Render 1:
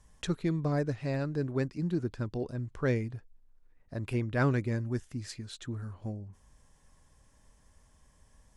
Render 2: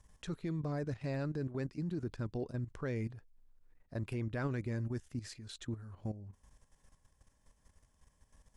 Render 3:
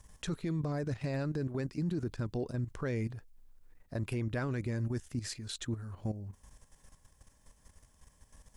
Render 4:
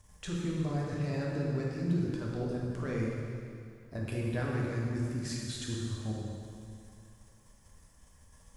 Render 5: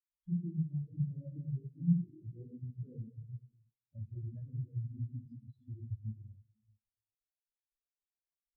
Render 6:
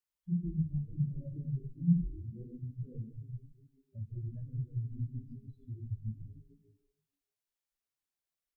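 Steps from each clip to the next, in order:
level quantiser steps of 12 dB
high shelf 6300 Hz +5.5 dB; limiter -32.5 dBFS, peak gain reduction 7.5 dB; gain +6 dB
plate-style reverb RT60 2.4 s, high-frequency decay 0.95×, DRR -4 dB; gain -3.5 dB
compressor 6:1, threshold -35 dBFS, peak gain reduction 10 dB; spectral expander 4:1; gain +8 dB
frequency-shifting echo 0.147 s, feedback 42%, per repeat -130 Hz, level -13 dB; gain +2 dB

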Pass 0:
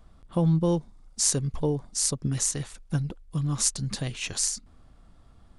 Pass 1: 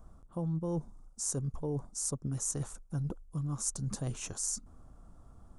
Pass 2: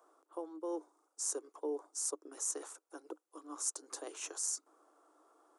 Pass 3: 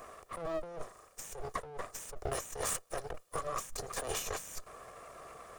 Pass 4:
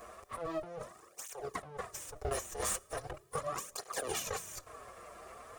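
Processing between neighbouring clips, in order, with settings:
band shelf 2900 Hz -13.5 dB; reverse; compressor 6:1, threshold -32 dBFS, peak gain reduction 12.5 dB; reverse
rippled Chebyshev high-pass 300 Hz, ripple 3 dB; gain +1 dB
minimum comb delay 1.7 ms; negative-ratio compressor -52 dBFS, ratio -1; gain +11.5 dB
on a send at -21 dB: reverb RT60 1.0 s, pre-delay 3 ms; on the sum: tape flanging out of phase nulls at 0.39 Hz, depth 7.8 ms; gain +3 dB

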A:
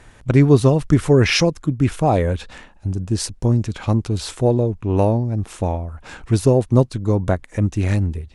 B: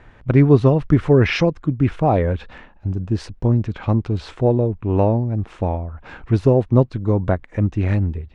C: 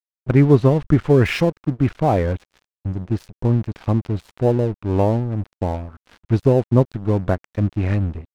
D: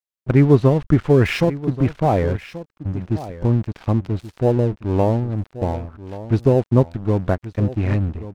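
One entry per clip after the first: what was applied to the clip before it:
LPF 2600 Hz 12 dB/oct
crossover distortion -33.5 dBFS
echo 1.131 s -15 dB

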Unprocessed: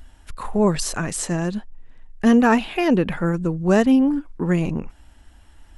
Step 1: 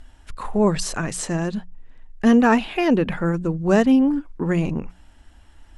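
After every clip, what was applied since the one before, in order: Bessel low-pass 9000 Hz; notches 60/120/180 Hz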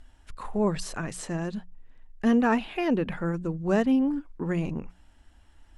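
dynamic EQ 6700 Hz, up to -4 dB, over -41 dBFS, Q 0.94; gain -7 dB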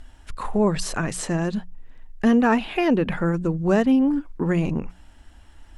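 compressor 1.5:1, threshold -28 dBFS, peak gain reduction 4 dB; gain +8 dB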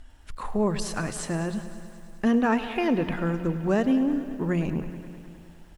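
feedback echo 0.185 s, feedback 58%, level -18.5 dB; lo-fi delay 0.104 s, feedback 80%, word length 8-bit, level -15 dB; gain -4.5 dB

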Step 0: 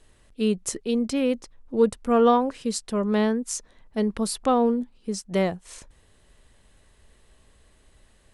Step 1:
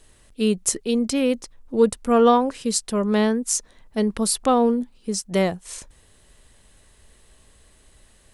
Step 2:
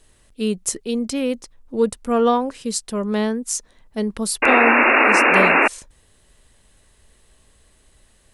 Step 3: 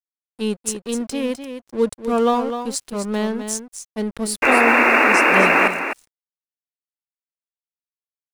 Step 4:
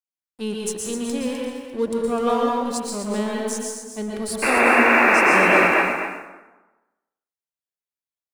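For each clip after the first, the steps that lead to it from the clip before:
high shelf 5200 Hz +8 dB; gain +2.5 dB
painted sound noise, 4.42–5.68, 220–2800 Hz -13 dBFS; gain -1.5 dB
crossover distortion -35 dBFS; echo 0.254 s -9 dB
plate-style reverb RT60 1.1 s, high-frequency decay 0.65×, pre-delay 0.105 s, DRR -2 dB; gain -5 dB

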